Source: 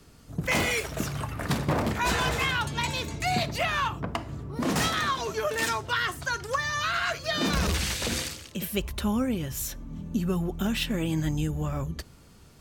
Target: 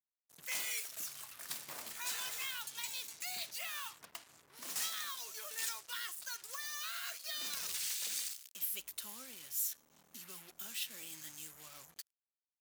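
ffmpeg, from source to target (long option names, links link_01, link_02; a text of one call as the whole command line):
ffmpeg -i in.wav -af "acrusher=bits=5:mix=0:aa=0.5,aderivative,volume=-5dB" out.wav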